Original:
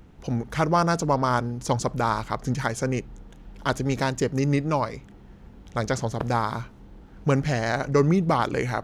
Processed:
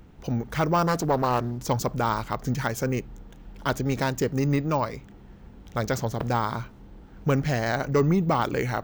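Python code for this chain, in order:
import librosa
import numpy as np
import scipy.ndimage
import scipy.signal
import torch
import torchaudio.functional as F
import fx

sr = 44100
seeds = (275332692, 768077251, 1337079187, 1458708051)

y = np.repeat(x[::2], 2)[:len(x)]
y = 10.0 ** (-12.5 / 20.0) * np.tanh(y / 10.0 ** (-12.5 / 20.0))
y = fx.doppler_dist(y, sr, depth_ms=0.4, at=(0.87, 1.68))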